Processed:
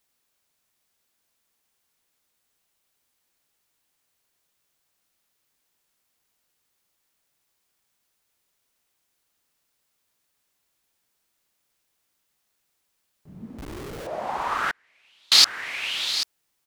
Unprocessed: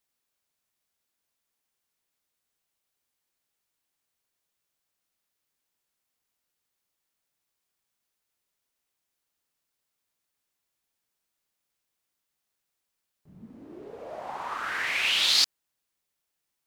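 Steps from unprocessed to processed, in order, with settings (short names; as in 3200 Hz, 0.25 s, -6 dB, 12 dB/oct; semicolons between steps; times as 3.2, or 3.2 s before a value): 13.58–14.07 Schmitt trigger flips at -44.5 dBFS; echo 0.788 s -11.5 dB; 14.7–15.32 flipped gate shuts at -23 dBFS, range -42 dB; gain +7.5 dB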